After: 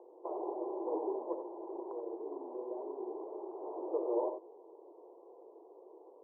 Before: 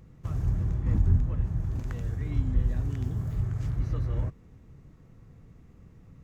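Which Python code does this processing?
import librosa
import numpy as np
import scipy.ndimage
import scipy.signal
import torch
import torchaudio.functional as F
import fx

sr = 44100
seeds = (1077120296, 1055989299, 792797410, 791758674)

y = scipy.signal.sosfilt(scipy.signal.cheby1(5, 1.0, [340.0, 1000.0], 'bandpass', fs=sr, output='sos'), x)
y = fx.dynamic_eq(y, sr, hz=660.0, q=0.83, threshold_db=-58.0, ratio=4.0, max_db=-6, at=(1.32, 3.62))
y = fx.echo_multitap(y, sr, ms=(68, 89), db=(-11.0, -10.0))
y = F.gain(torch.from_numpy(y), 12.0).numpy()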